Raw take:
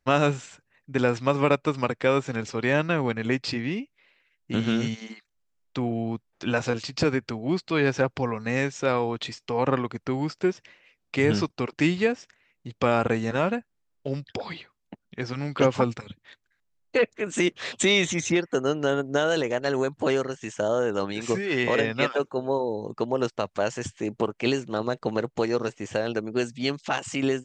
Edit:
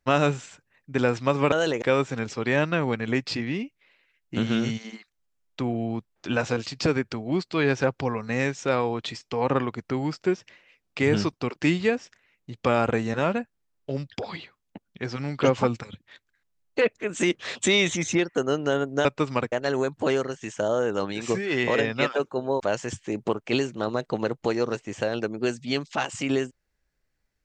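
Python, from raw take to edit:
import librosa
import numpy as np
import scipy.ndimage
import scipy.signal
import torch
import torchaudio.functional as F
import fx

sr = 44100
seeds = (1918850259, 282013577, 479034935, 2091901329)

y = fx.edit(x, sr, fx.swap(start_s=1.52, length_s=0.47, other_s=19.22, other_length_s=0.3),
    fx.cut(start_s=22.6, length_s=0.93), tone=tone)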